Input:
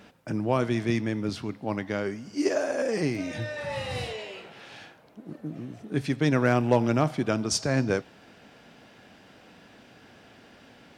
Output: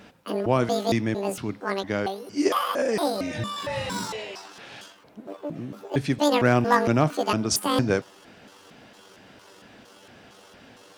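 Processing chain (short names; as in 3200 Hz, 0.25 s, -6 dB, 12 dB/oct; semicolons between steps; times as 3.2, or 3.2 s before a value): trilling pitch shifter +11.5 st, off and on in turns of 0.229 s; gain +3 dB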